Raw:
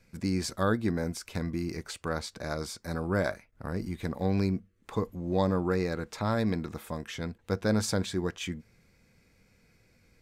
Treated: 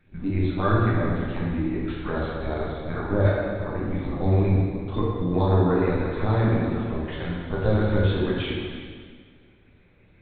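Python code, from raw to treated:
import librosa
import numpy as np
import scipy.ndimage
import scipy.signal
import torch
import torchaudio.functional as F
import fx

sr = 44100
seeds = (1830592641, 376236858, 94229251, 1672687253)

p1 = scipy.signal.sosfilt(scipy.signal.butter(4, 51.0, 'highpass', fs=sr, output='sos'), x)
p2 = fx.phaser_stages(p1, sr, stages=6, low_hz=120.0, high_hz=2300.0, hz=2.9, feedback_pct=15)
p3 = fx.lpc_vocoder(p2, sr, seeds[0], excitation='pitch_kept', order=10)
p4 = p3 + fx.echo_single(p3, sr, ms=349, db=-14.5, dry=0)
p5 = fx.rev_plate(p4, sr, seeds[1], rt60_s=1.7, hf_ratio=0.95, predelay_ms=0, drr_db=-5.5)
y = p5 * 10.0 ** (3.5 / 20.0)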